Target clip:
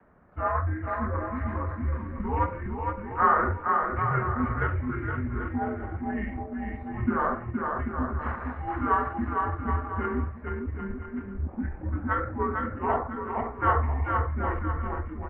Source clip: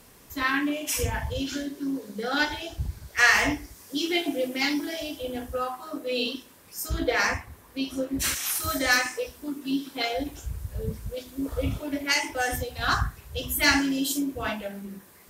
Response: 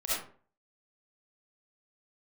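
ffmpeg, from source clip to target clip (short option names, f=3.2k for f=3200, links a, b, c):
-filter_complex "[0:a]bandreject=f=60:t=h:w=6,bandreject=f=120:t=h:w=6,bandreject=f=180:t=h:w=6,bandreject=f=240:t=h:w=6,adynamicequalizer=threshold=0.00355:dfrequency=200:dqfactor=3.4:tfrequency=200:tqfactor=3.4:attack=5:release=100:ratio=0.375:range=3:mode=boostabove:tftype=bell,acrossover=split=340|1100[a][b][c];[c]acrusher=bits=5:mode=log:mix=0:aa=0.000001[d];[a][b][d]amix=inputs=3:normalize=0,highpass=f=210:t=q:w=0.5412,highpass=f=210:t=q:w=1.307,lowpass=f=2.5k:t=q:w=0.5176,lowpass=f=2.5k:t=q:w=0.7071,lowpass=f=2.5k:t=q:w=1.932,afreqshift=-170,asplit=2[e][f];[f]asetrate=37084,aresample=44100,atempo=1.18921,volume=-18dB[g];[e][g]amix=inputs=2:normalize=0,aecho=1:1:460|782|1007|1165|1276:0.631|0.398|0.251|0.158|0.1,asetrate=32097,aresample=44100,atempo=1.37395,volume=-1dB"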